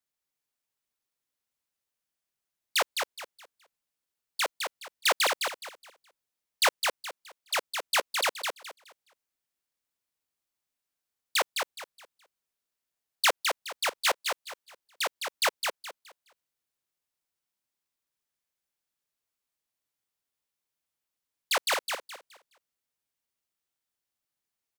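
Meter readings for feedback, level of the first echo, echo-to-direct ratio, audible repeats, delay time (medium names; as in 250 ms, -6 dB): 27%, -5.0 dB, -4.5 dB, 3, 210 ms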